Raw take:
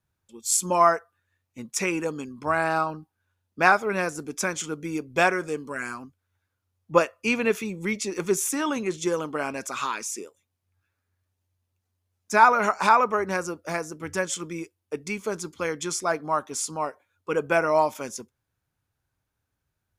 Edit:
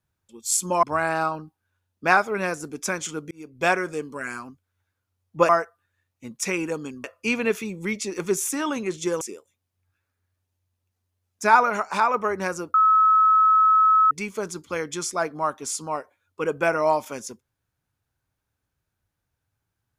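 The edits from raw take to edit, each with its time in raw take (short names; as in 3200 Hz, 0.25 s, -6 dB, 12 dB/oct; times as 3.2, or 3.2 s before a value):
0.83–2.38 move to 7.04
4.86–5.25 fade in
9.21–10.1 cut
12.59–13.03 gain -3 dB
13.63–15 bleep 1290 Hz -13.5 dBFS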